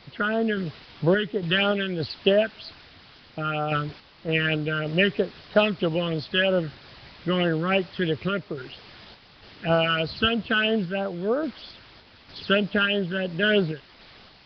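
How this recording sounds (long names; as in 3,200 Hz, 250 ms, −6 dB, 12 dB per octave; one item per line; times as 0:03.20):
phaser sweep stages 12, 3.1 Hz, lowest notch 700–2,500 Hz
a quantiser's noise floor 8 bits, dither triangular
sample-and-hold tremolo
Nellymoser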